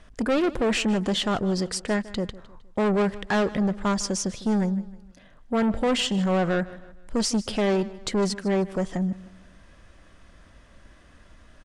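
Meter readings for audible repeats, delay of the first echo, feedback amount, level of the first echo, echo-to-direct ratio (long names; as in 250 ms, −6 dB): 3, 155 ms, 41%, −18.5 dB, −17.5 dB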